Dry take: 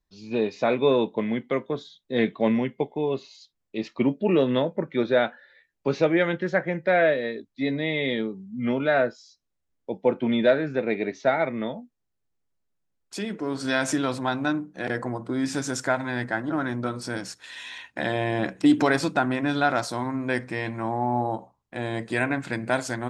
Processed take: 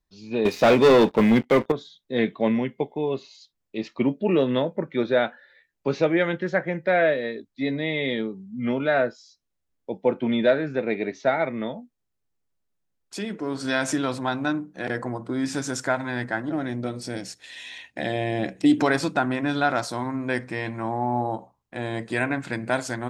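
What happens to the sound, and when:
0.45–1.72 s: waveshaping leveller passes 3
16.49–18.78 s: high-order bell 1.2 kHz -8.5 dB 1 oct

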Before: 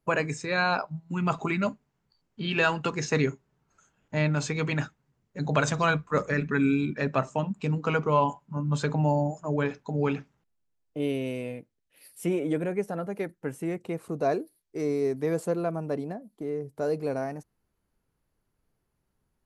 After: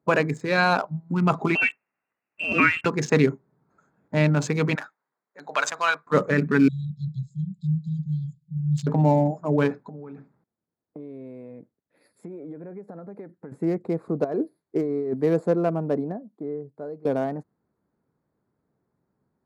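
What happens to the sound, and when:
1.55–2.86 s: frequency inversion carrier 2.9 kHz
4.75–6.07 s: high-pass 980 Hz
6.68–8.87 s: brick-wall FIR band-stop 180–3200 Hz
9.75–13.52 s: compression 8:1, threshold -42 dBFS
14.24–15.14 s: compressor with a negative ratio -32 dBFS
15.86–17.05 s: fade out linear, to -20.5 dB
whole clip: local Wiener filter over 15 samples; high-pass 180 Hz 12 dB/octave; bass shelf 280 Hz +7 dB; trim +4.5 dB

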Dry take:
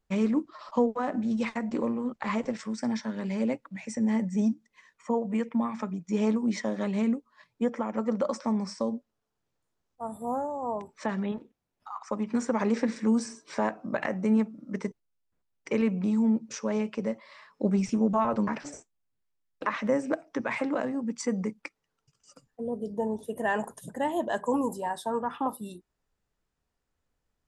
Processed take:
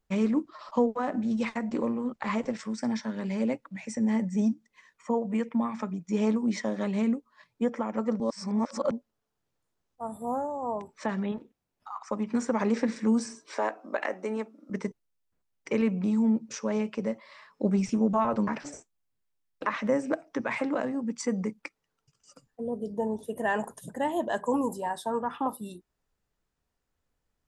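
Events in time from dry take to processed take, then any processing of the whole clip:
8.20–8.91 s: reverse
13.46–14.70 s: high-pass 310 Hz 24 dB/octave

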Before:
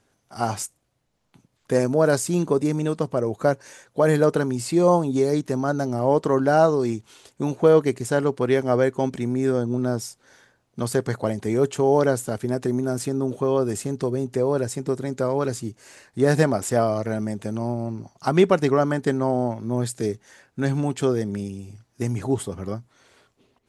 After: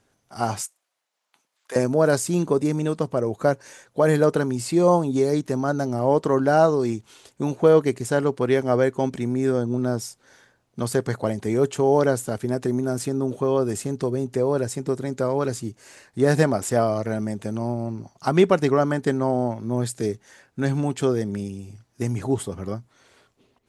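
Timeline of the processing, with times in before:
0.61–1.76 s: high-pass 850 Hz

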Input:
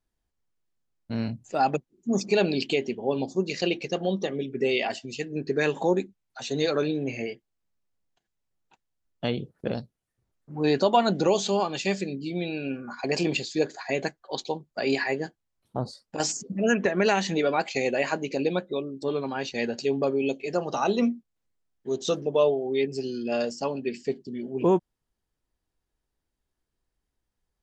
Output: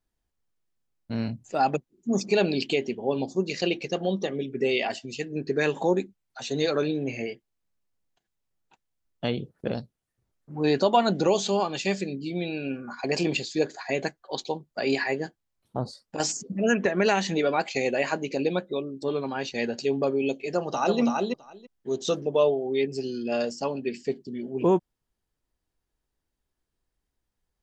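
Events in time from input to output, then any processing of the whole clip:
20.50–21.00 s: echo throw 330 ms, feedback 10%, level -3 dB

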